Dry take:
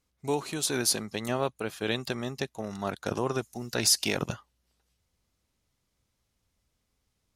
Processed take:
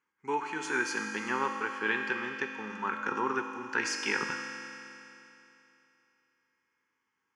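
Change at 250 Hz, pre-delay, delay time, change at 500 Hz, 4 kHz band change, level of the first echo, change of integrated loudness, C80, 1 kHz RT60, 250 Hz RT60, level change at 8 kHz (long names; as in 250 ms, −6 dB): −4.5 dB, 4 ms, no echo audible, −5.5 dB, −9.5 dB, no echo audible, −3.0 dB, 4.5 dB, 3.0 s, 2.9 s, −12.0 dB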